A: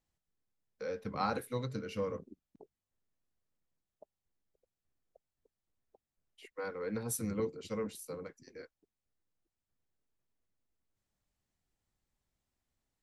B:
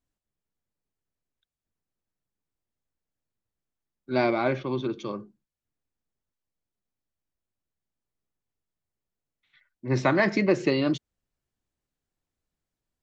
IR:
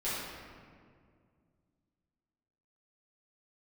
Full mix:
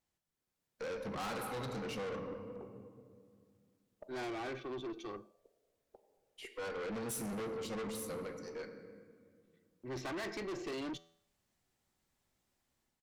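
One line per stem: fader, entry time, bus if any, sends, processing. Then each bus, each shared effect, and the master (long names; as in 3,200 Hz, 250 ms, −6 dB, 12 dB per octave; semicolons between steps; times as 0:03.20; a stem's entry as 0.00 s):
0.0 dB, 0.00 s, send −12.5 dB, automatic gain control gain up to 6 dB
−4.5 dB, 0.00 s, no send, comb filter 2.6 ms, depth 50%; noise gate −53 dBFS, range −13 dB; tuned comb filter 83 Hz, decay 0.63 s, harmonics all, mix 40%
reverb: on, RT60 2.1 s, pre-delay 5 ms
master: low-shelf EQ 110 Hz −9 dB; tube saturation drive 38 dB, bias 0.3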